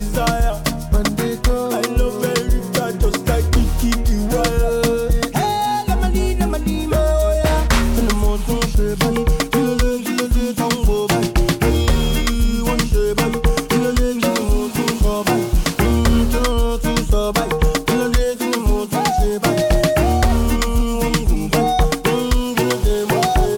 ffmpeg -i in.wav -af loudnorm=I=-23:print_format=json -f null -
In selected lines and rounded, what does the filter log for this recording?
"input_i" : "-18.1",
"input_tp" : "-6.7",
"input_lra" : "1.0",
"input_thresh" : "-28.1",